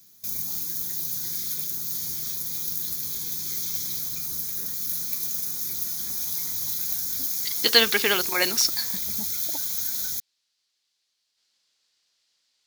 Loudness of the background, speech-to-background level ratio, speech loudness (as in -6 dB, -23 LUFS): -26.0 LUFS, 4.5 dB, -21.5 LUFS